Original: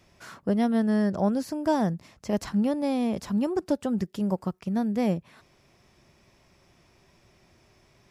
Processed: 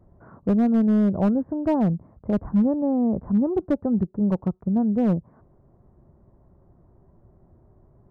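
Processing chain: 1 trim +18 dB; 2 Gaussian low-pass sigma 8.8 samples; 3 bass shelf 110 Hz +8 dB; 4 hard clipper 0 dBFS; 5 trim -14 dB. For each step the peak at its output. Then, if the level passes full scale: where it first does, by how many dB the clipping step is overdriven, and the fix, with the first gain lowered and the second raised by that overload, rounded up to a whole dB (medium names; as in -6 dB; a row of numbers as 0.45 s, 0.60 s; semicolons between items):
+5.0 dBFS, +3.0 dBFS, +4.5 dBFS, 0.0 dBFS, -14.0 dBFS; step 1, 4.5 dB; step 1 +13 dB, step 5 -9 dB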